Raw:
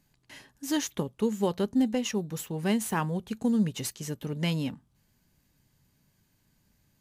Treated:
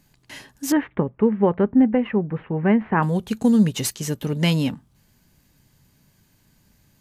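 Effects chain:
0:00.72–0:03.03: Butterworth low-pass 2,200 Hz 36 dB per octave
level +9 dB

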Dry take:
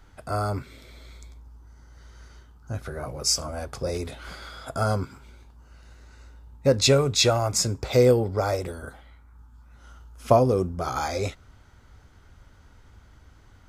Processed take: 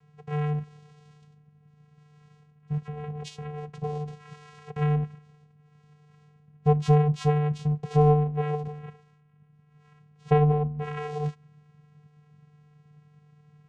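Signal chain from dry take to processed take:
treble cut that deepens with the level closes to 2,700 Hz, closed at −20 dBFS
channel vocoder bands 4, square 149 Hz

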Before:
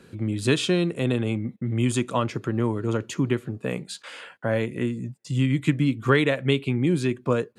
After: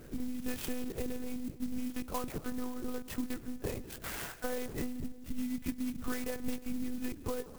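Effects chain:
0:05.95–0:06.84: low-shelf EQ 170 Hz +9.5 dB
downward compressor 6 to 1, threshold −34 dBFS, peak gain reduction 21 dB
comb and all-pass reverb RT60 1.8 s, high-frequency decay 0.3×, pre-delay 115 ms, DRR 14 dB
one-pitch LPC vocoder at 8 kHz 250 Hz
converter with an unsteady clock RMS 0.077 ms
level +1 dB

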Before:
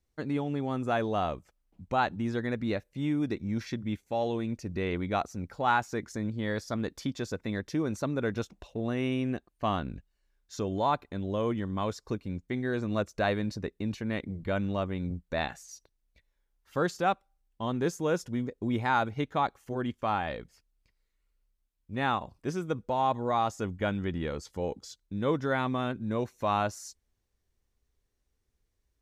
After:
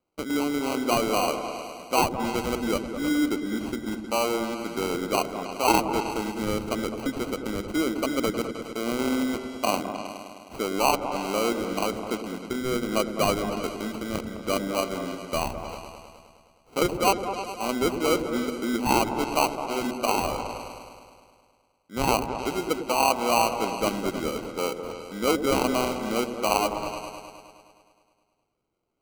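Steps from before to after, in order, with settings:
high-pass filter 240 Hz 24 dB per octave
decimation without filtering 25×
echo whose low-pass opens from repeat to repeat 104 ms, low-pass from 400 Hz, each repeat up 2 octaves, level −6 dB
level +5 dB

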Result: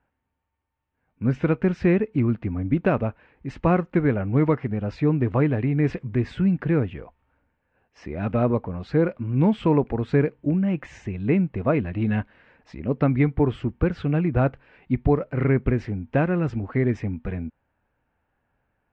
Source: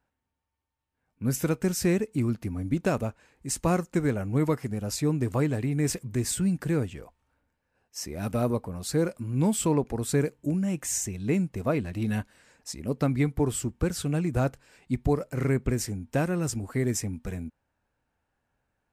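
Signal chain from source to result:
low-pass filter 2,800 Hz 24 dB per octave
level +5 dB

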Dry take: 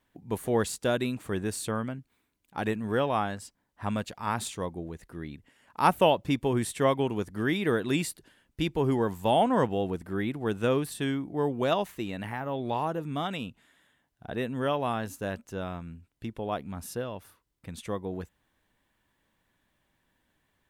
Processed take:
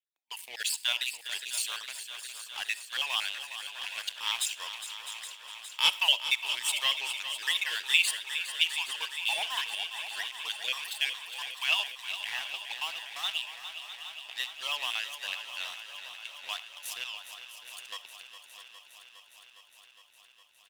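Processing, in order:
time-frequency cells dropped at random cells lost 36%
noise gate −50 dBFS, range −12 dB
four-pole ladder high-pass 930 Hz, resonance 55%
notch filter 2,400 Hz, Q 25
leveller curve on the samples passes 3
high shelf with overshoot 1,800 Hz +14 dB, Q 3
single-tap delay 655 ms −12.5 dB
on a send at −18.5 dB: convolution reverb RT60 0.30 s, pre-delay 25 ms
on the sum: feedback echo at a low word length 410 ms, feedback 80%, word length 11 bits, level −11 dB
level −8.5 dB

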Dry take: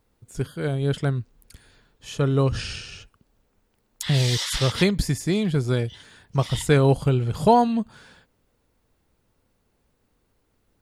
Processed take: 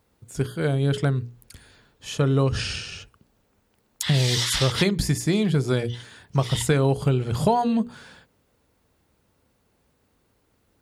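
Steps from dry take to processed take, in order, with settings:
high-pass filter 53 Hz
mains-hum notches 60/120/180/240/300/360/420/480 Hz
downward compressor 6 to 1, threshold −20 dBFS, peak gain reduction 9 dB
level +3.5 dB

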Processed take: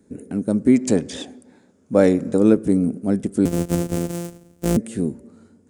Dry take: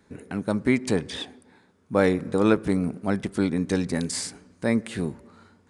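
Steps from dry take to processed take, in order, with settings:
0:03.45–0:04.77: samples sorted by size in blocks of 256 samples
octave-band graphic EQ 250/500/1,000/2,000/4,000/8,000 Hz +8/+4/−9/−6/−8/+7 dB
0:00.75–0:02.38: gain on a spectral selection 500–7,700 Hz +6 dB

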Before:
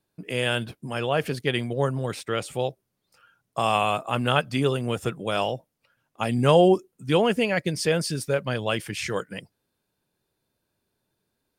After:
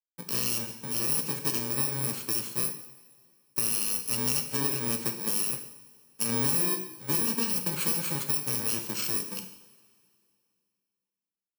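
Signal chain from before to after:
samples in bit-reversed order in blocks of 64 samples
high-pass filter 140 Hz 24 dB per octave
high-shelf EQ 11,000 Hz +3 dB
downward compressor 6 to 1, threshold −23 dBFS, peak gain reduction 12 dB
dead-zone distortion −50 dBFS
coupled-rooms reverb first 0.77 s, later 2.6 s, from −18 dB, DRR 4.5 dB
level −1.5 dB

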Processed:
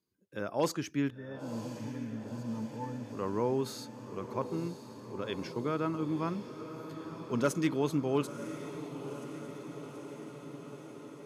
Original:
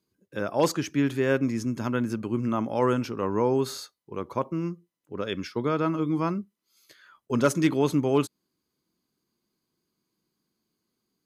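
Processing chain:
0:01.10–0:03.15: resonances in every octave A, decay 0.11 s
feedback delay with all-pass diffusion 986 ms, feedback 71%, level −11 dB
level −7 dB

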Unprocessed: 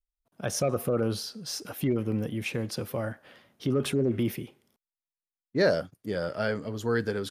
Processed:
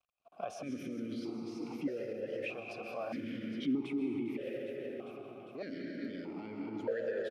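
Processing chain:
mu-law and A-law mismatch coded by mu
repeating echo 403 ms, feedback 52%, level −13 dB
tape wow and flutter 28 cents
dense smooth reverb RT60 3.9 s, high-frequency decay 0.4×, pre-delay 110 ms, DRR 2 dB
downward compressor 6 to 1, threshold −32 dBFS, peak gain reduction 13 dB
brickwall limiter −29 dBFS, peak gain reduction 8.5 dB
formant filter that steps through the vowels 1.6 Hz
level +11.5 dB

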